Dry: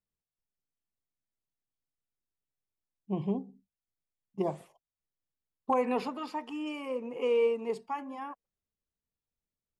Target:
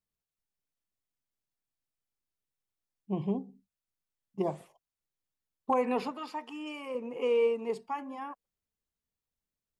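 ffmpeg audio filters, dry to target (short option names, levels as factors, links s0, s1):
-filter_complex "[0:a]asettb=1/sr,asplit=3[s0][s1][s2];[s0]atrim=end=6.114[s3];[s1]atrim=start=6.11:end=6.95,asetpts=PTS-STARTPTS,afade=t=in:d=0.004:c=qsin,afade=t=out:st=0.836:d=0.004:c=qsin,lowshelf=f=450:g=-6.5[s4];[s2]atrim=start=6.946[s5];[s3][s4]acrossfade=d=0.004:c1=hsin:c2=qsin[s6];[s6][s5]acrossfade=d=0.004:c1=qsin:c2=hsin"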